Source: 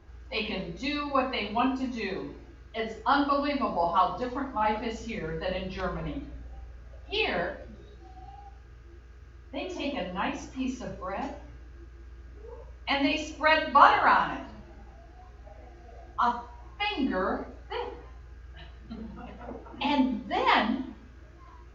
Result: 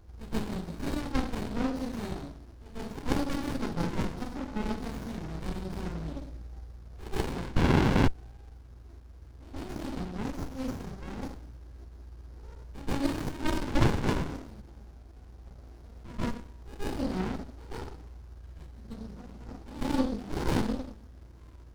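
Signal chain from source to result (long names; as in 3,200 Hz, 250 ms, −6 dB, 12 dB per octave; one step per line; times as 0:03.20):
high shelf with overshoot 3,600 Hz +11.5 dB, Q 3
backwards echo 133 ms −15 dB
sound drawn into the spectrogram noise, 0:07.56–0:08.08, 540–1,800 Hz −18 dBFS
windowed peak hold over 65 samples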